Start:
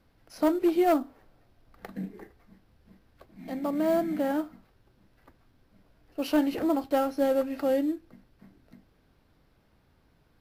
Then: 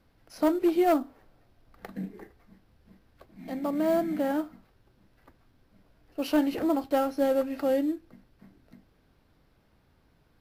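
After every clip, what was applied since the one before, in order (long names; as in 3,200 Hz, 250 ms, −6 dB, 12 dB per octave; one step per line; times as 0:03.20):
no processing that can be heard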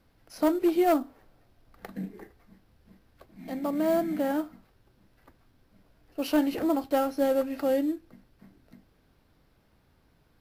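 parametric band 14,000 Hz +3 dB 1.7 octaves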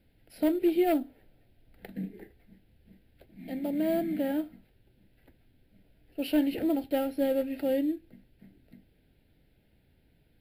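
phaser with its sweep stopped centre 2,700 Hz, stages 4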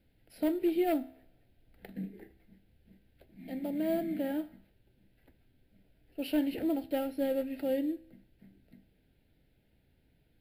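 tuned comb filter 65 Hz, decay 0.7 s, harmonics all, mix 40%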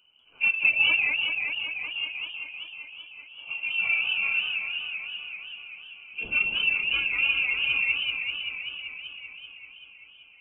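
random phases in long frames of 50 ms
voice inversion scrambler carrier 3,000 Hz
feedback echo with a swinging delay time 193 ms, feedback 78%, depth 203 cents, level −5 dB
level +4 dB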